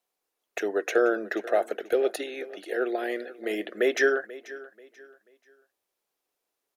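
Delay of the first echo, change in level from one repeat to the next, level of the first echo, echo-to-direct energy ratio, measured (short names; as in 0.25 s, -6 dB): 0.486 s, -10.0 dB, -18.0 dB, -17.5 dB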